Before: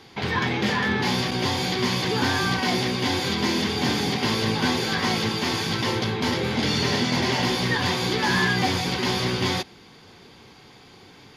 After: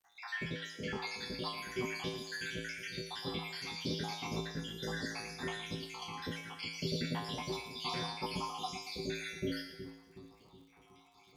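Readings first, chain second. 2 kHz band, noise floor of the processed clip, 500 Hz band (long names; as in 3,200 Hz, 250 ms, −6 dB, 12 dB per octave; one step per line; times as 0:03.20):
−16.5 dB, −63 dBFS, −15.0 dB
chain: time-frequency cells dropped at random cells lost 78%
tuned comb filter 55 Hz, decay 0.58 s, harmonics odd, mix 90%
surface crackle 140 per second −61 dBFS
echo with a time of its own for lows and highs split 450 Hz, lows 369 ms, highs 115 ms, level −9.5 dB
level +2 dB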